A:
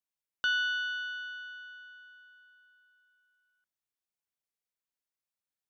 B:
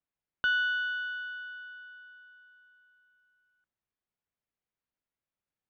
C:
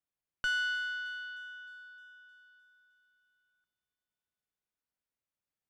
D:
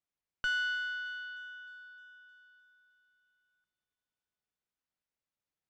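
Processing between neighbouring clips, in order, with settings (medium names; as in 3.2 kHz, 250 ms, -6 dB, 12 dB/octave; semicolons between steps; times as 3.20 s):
low-pass 2.5 kHz 12 dB/octave; bass shelf 290 Hz +7.5 dB; trim +2.5 dB
valve stage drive 26 dB, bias 0.65; feedback echo behind a high-pass 308 ms, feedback 59%, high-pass 3.3 kHz, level -14.5 dB
distance through air 55 m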